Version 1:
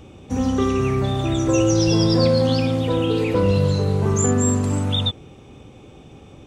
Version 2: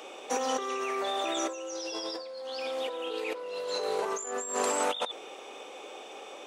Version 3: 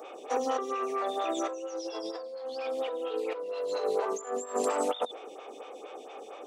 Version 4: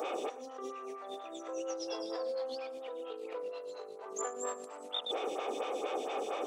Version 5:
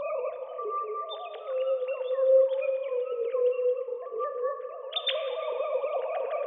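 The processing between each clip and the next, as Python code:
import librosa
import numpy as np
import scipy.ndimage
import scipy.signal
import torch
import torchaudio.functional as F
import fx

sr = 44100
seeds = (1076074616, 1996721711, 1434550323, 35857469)

y1 = scipy.signal.sosfilt(scipy.signal.butter(4, 480.0, 'highpass', fs=sr, output='sos'), x)
y1 = fx.over_compress(y1, sr, threshold_db=-34.0, ratio=-1.0)
y2 = fx.small_body(y1, sr, hz=(280.0, 460.0, 690.0, 1200.0), ring_ms=20, db=6)
y2 = fx.stagger_phaser(y2, sr, hz=4.3)
y2 = y2 * librosa.db_to_amplitude(-1.5)
y3 = fx.over_compress(y2, sr, threshold_db=-42.0, ratio=-1.0)
y3 = y3 + 10.0 ** (-17.5 / 20.0) * np.pad(y3, (int(118 * sr / 1000.0), 0))[:len(y3)]
y3 = y3 * librosa.db_to_amplitude(1.0)
y4 = fx.sine_speech(y3, sr)
y4 = fx.rev_plate(y4, sr, seeds[0], rt60_s=3.3, hf_ratio=0.5, predelay_ms=0, drr_db=6.5)
y4 = y4 * librosa.db_to_amplitude(9.0)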